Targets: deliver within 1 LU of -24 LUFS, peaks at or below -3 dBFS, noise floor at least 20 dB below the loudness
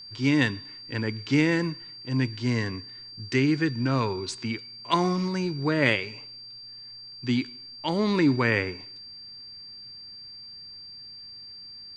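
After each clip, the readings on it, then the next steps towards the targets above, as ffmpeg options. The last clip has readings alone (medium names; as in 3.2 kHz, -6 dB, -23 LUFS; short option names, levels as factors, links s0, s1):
steady tone 4.7 kHz; tone level -41 dBFS; loudness -26.5 LUFS; peak level -6.0 dBFS; loudness target -24.0 LUFS
-> -af "bandreject=f=4700:w=30"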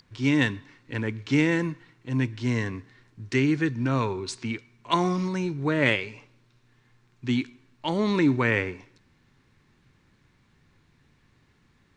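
steady tone not found; loudness -26.5 LUFS; peak level -6.5 dBFS; loudness target -24.0 LUFS
-> -af "volume=1.33"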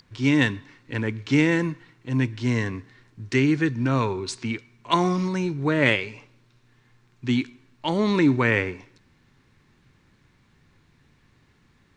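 loudness -24.0 LUFS; peak level -4.0 dBFS; noise floor -62 dBFS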